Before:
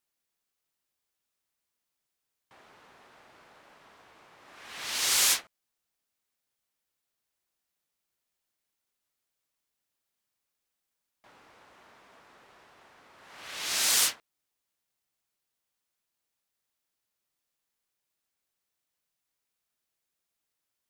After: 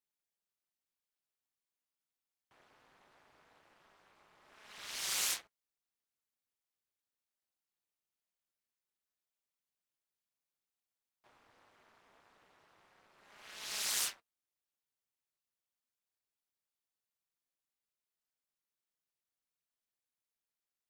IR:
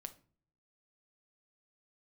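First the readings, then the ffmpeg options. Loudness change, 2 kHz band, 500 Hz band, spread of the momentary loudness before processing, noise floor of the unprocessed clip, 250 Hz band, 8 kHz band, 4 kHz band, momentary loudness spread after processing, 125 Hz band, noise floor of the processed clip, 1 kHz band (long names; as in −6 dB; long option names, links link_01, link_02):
−10.5 dB, −10.5 dB, −10.5 dB, 17 LU, −85 dBFS, −11.0 dB, −10.5 dB, −10.5 dB, 17 LU, can't be measured, below −85 dBFS, −10.5 dB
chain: -af "flanger=delay=4.7:depth=3.8:regen=-53:speed=0.22:shape=sinusoidal,tremolo=f=220:d=0.947,volume=-2.5dB"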